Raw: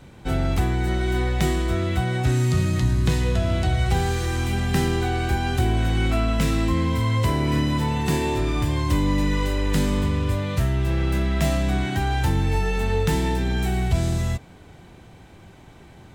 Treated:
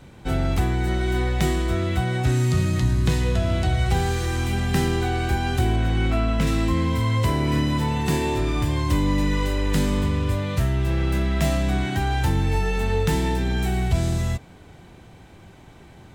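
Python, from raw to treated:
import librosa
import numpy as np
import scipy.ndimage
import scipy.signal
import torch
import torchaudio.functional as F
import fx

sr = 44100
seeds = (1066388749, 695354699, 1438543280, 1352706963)

y = fx.high_shelf(x, sr, hz=5200.0, db=-8.0, at=(5.76, 6.47))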